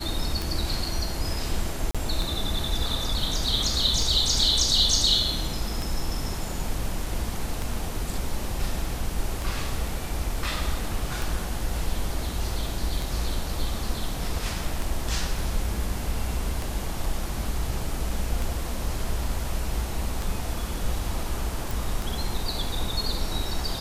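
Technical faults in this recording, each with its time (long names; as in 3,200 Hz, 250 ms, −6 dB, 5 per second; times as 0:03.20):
scratch tick 33 1/3 rpm
0:01.91–0:01.95: drop-out 36 ms
0:21.71: click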